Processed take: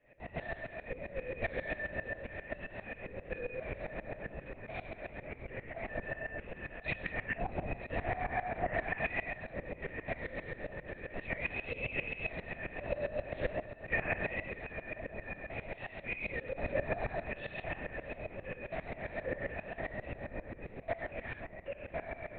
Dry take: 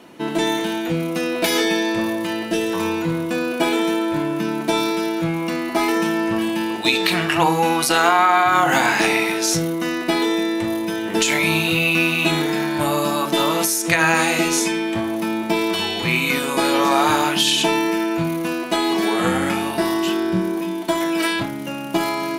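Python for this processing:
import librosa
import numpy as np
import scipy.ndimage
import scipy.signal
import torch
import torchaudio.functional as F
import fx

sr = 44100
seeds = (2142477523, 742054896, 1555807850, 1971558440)

p1 = fx.dynamic_eq(x, sr, hz=3100.0, q=1.3, threshold_db=-31.0, ratio=4.0, max_db=-4)
p2 = fx.vowel_filter(p1, sr, vowel='e')
p3 = fx.air_absorb(p2, sr, metres=290.0)
p4 = fx.fixed_phaser(p3, sr, hz=2100.0, stages=8)
p5 = p4 + fx.echo_feedback(p4, sr, ms=633, feedback_pct=59, wet_db=-15, dry=0)
p6 = fx.lpc_vocoder(p5, sr, seeds[0], excitation='whisper', order=8)
p7 = fx.tremolo_decay(p6, sr, direction='swelling', hz=7.5, depth_db=18)
y = p7 * librosa.db_to_amplitude(7.5)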